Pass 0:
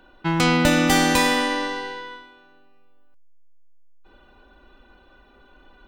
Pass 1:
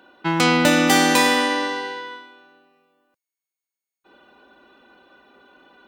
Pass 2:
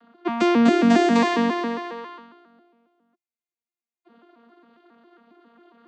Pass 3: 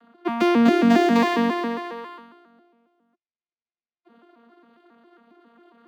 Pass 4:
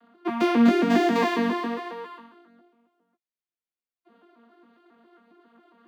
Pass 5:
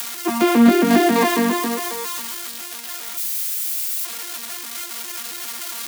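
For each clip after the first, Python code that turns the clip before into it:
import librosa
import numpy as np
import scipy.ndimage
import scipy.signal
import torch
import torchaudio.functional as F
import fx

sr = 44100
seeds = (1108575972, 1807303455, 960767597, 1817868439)

y1 = scipy.signal.sosfilt(scipy.signal.butter(2, 200.0, 'highpass', fs=sr, output='sos'), x)
y1 = y1 * 10.0 ** (2.5 / 20.0)
y2 = fx.vocoder_arp(y1, sr, chord='bare fifth', root=58, every_ms=136)
y3 = scipy.signal.medfilt(y2, 5)
y4 = fx.chorus_voices(y3, sr, voices=2, hz=0.99, base_ms=18, depth_ms=3.0, mix_pct=35)
y5 = y4 + 0.5 * 10.0 ** (-21.0 / 20.0) * np.diff(np.sign(y4), prepend=np.sign(y4[:1]))
y5 = y5 * 10.0 ** (5.5 / 20.0)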